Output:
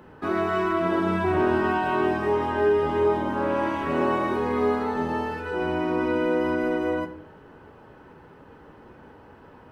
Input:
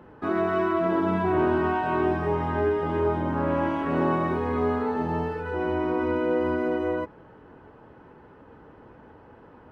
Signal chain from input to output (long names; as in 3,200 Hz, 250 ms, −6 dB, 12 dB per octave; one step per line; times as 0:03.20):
high-shelf EQ 3,000 Hz +10 dB
convolution reverb RT60 0.55 s, pre-delay 5 ms, DRR 8 dB